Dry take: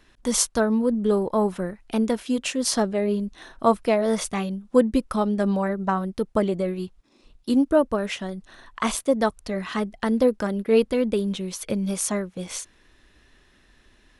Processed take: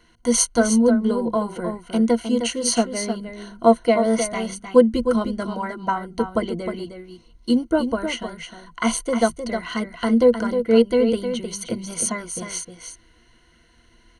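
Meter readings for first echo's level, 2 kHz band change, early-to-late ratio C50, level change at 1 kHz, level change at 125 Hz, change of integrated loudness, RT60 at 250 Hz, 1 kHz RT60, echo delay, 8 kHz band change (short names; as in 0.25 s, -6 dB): -8.0 dB, +3.0 dB, none, +2.5 dB, -2.5 dB, +2.5 dB, none, none, 0.309 s, +4.0 dB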